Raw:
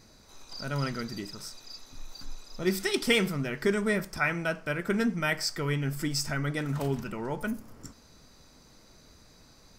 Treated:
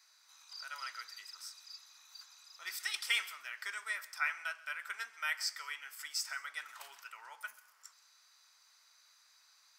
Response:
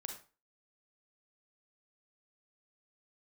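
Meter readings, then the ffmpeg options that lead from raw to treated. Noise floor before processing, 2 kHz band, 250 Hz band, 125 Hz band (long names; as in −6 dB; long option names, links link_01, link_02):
−57 dBFS, −5.5 dB, below −40 dB, below −40 dB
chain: -filter_complex "[0:a]highpass=frequency=1100:width=0.5412,highpass=frequency=1100:width=1.3066,asplit=2[link_01][link_02];[1:a]atrim=start_sample=2205,adelay=132[link_03];[link_02][link_03]afir=irnorm=-1:irlink=0,volume=-16.5dB[link_04];[link_01][link_04]amix=inputs=2:normalize=0,volume=-5.5dB"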